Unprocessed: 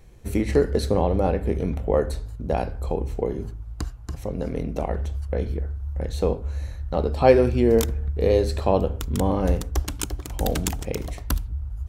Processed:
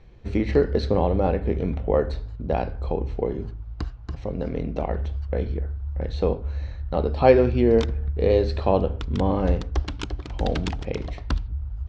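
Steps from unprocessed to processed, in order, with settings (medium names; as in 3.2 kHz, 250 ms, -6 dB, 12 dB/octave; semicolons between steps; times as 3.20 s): low-pass 4.6 kHz 24 dB/octave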